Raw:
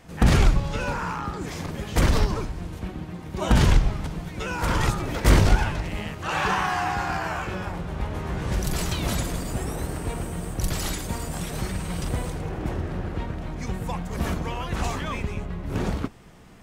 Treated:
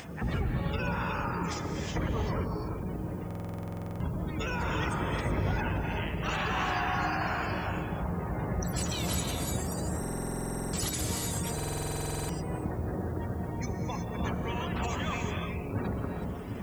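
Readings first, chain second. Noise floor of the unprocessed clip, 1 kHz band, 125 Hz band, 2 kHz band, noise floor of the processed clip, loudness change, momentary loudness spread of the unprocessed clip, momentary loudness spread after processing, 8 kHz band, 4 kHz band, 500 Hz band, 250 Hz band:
−37 dBFS, −5.0 dB, −6.5 dB, −5.0 dB, −37 dBFS, −6.0 dB, 12 LU, 5 LU, −2.5 dB, −6.0 dB, −4.5 dB, −5.0 dB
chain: gate on every frequency bin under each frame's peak −25 dB strong
high-pass filter 57 Hz 24 dB per octave
high-shelf EQ 4,000 Hz +11.5 dB
upward compression, threshold −29 dBFS
brickwall limiter −17.5 dBFS, peak gain reduction 10 dB
background noise blue −60 dBFS
on a send: delay with a low-pass on its return 748 ms, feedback 81%, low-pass 620 Hz, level −8.5 dB
on the sum: reverb whose tail is shaped and stops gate 390 ms rising, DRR 2 dB
buffer that repeats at 0:03.26/0:09.99/0:11.55, samples 2,048, times 15
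level −6 dB

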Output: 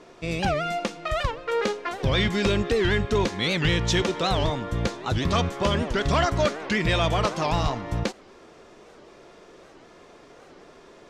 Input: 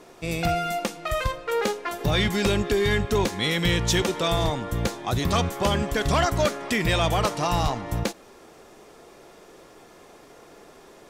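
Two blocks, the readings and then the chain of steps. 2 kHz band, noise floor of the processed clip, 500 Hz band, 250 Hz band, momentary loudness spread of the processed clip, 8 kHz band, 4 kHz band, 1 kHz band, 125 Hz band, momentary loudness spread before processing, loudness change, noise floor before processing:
0.0 dB, −51 dBFS, 0.0 dB, 0.0 dB, 6 LU, −4.5 dB, −0.5 dB, −0.5 dB, 0.0 dB, 6 LU, −0.5 dB, −50 dBFS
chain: low-pass filter 5,800 Hz 12 dB per octave
notch filter 800 Hz, Q 12
wow of a warped record 78 rpm, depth 250 cents

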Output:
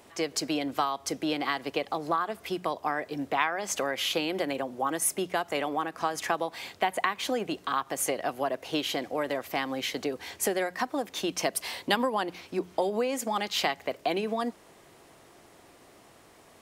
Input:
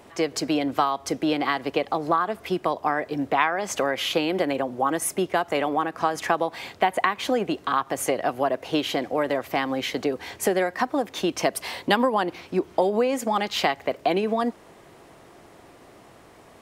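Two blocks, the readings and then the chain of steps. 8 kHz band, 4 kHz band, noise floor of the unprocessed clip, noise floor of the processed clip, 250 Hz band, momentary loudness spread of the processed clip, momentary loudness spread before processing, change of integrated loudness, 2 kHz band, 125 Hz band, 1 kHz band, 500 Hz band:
0.0 dB, −2.0 dB, −51 dBFS, −56 dBFS, −6.5 dB, 4 LU, 4 LU, −5.0 dB, −4.5 dB, −7.5 dB, −6.0 dB, −6.5 dB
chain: high-shelf EQ 2,900 Hz +7.5 dB
mains-hum notches 60/120/180 Hz
level −6.5 dB

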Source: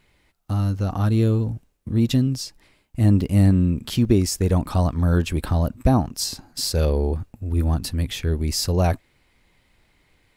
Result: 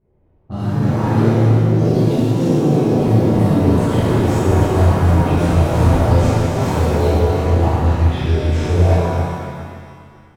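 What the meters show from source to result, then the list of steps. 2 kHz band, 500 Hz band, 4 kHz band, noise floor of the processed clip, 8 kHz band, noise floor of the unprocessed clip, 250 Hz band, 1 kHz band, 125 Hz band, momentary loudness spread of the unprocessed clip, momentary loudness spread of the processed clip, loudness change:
+9.0 dB, +10.0 dB, −2.5 dB, −49 dBFS, −4.5 dB, −64 dBFS, +6.0 dB, +10.5 dB, +6.5 dB, 9 LU, 6 LU, +6.5 dB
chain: running median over 9 samples
delay with pitch and tempo change per echo 180 ms, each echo +3 semitones, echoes 3
parametric band 500 Hz +3.5 dB 0.77 octaves
downward compressor, threshold −18 dBFS, peak gain reduction 10 dB
low-pass that shuts in the quiet parts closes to 530 Hz, open at −19 dBFS
double-tracking delay 35 ms −5 dB
on a send: single-tap delay 286 ms −7.5 dB
on the sum: reverb with rising layers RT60 1.9 s, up +7 semitones, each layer −8 dB, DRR −11 dB
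level −6 dB

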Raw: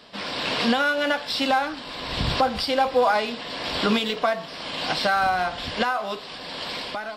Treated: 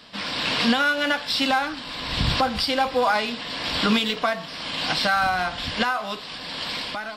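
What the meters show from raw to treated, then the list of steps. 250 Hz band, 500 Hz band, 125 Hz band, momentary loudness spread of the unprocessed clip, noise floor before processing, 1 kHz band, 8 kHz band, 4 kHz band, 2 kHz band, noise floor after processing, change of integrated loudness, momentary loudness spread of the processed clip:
+1.5 dB, −3.0 dB, +2.5 dB, 10 LU, −38 dBFS, −0.5 dB, +3.0 dB, +3.0 dB, +2.0 dB, −37 dBFS, +1.0 dB, 9 LU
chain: parametric band 570 Hz −6 dB 1.5 octaves
notch filter 390 Hz, Q 12
level +3 dB

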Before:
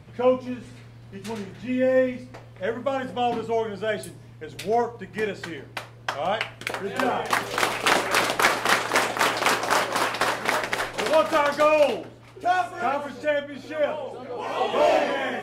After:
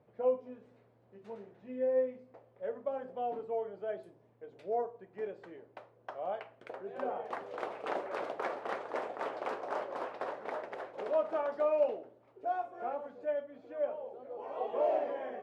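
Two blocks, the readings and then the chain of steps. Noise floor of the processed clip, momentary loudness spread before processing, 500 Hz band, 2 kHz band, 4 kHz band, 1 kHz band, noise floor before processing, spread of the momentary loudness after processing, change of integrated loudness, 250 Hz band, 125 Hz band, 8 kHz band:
−66 dBFS, 14 LU, −9.5 dB, −22.0 dB, −28.5 dB, −14.0 dB, −46 dBFS, 17 LU, −12.5 dB, −16.5 dB, below −20 dB, below −35 dB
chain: resonant band-pass 540 Hz, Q 1.5
level −9 dB

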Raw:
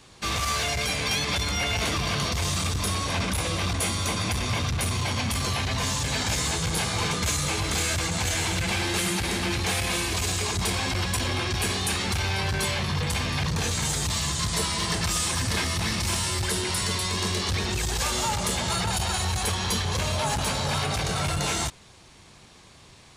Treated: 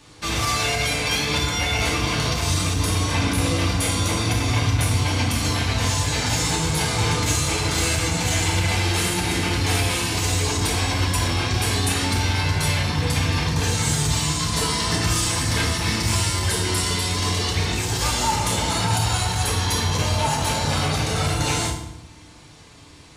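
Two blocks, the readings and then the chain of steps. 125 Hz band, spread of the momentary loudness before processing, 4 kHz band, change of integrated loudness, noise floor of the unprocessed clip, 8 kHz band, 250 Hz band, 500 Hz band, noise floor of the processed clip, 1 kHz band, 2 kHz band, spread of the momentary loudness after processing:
+6.5 dB, 2 LU, +3.5 dB, +4.5 dB, −51 dBFS, +3.5 dB, +5.5 dB, +4.5 dB, −45 dBFS, +4.5 dB, +3.5 dB, 1 LU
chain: feedback delay network reverb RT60 0.8 s, low-frequency decay 1.6×, high-frequency decay 0.8×, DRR −1.5 dB

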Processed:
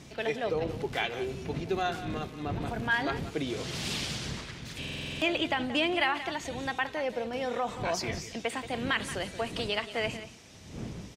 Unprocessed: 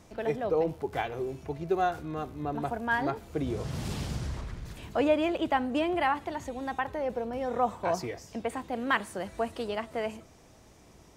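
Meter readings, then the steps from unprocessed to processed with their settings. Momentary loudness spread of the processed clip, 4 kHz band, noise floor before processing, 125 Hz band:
9 LU, +9.5 dB, −56 dBFS, 0.0 dB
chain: wind on the microphone 130 Hz −33 dBFS
brickwall limiter −20 dBFS, peak gain reduction 9.5 dB
meter weighting curve D
on a send: single-tap delay 179 ms −13 dB
on the sum: buffer that repeats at 0:04.80, samples 2,048, times 8
MP3 64 kbit/s 48,000 Hz

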